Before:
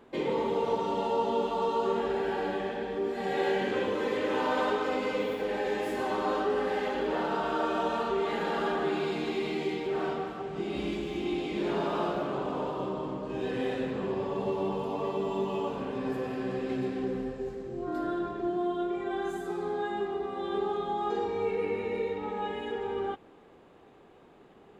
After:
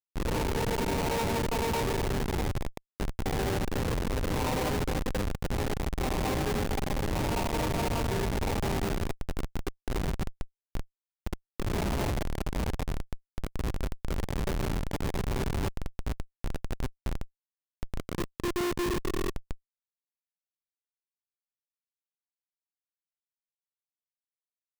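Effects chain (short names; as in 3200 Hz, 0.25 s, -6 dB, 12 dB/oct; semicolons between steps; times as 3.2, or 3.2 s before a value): low-pass sweep 930 Hz -> 260 Hz, 16.34–20.02; Schmitt trigger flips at -23 dBFS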